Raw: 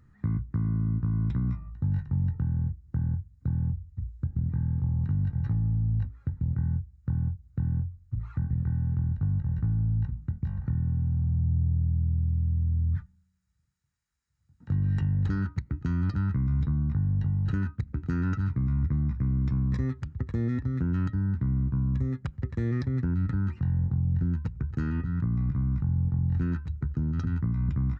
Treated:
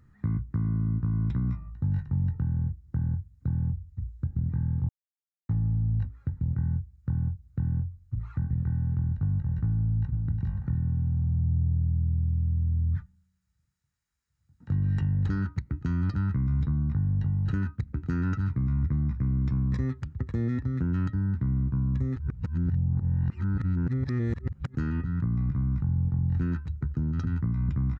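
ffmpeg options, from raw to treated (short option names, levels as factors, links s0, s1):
-filter_complex "[0:a]asplit=2[s0][s1];[s1]afade=t=in:st=9.76:d=0.01,afade=t=out:st=10.26:d=0.01,aecho=0:1:360|720|1080:0.630957|0.157739|0.0394348[s2];[s0][s2]amix=inputs=2:normalize=0,asplit=5[s3][s4][s5][s6][s7];[s3]atrim=end=4.89,asetpts=PTS-STARTPTS,afade=t=out:st=4.886:d=0.004:c=hsin[s8];[s4]atrim=start=4.89:end=5.49,asetpts=PTS-STARTPTS,volume=0[s9];[s5]atrim=start=5.49:end=22.162,asetpts=PTS-STARTPTS,afade=t=in:d=0.004:c=hsin[s10];[s6]atrim=start=22.158:end=24.752,asetpts=PTS-STARTPTS,areverse[s11];[s7]atrim=start=24.748[s12];[s8][s9][s10]concat=n=3:v=0:a=1[s13];[s13][s11]acrossfade=d=0.004:c1=hsin:c2=hsin[s14];[s14][s12]acrossfade=d=0.004:c1=hsin:c2=hsin"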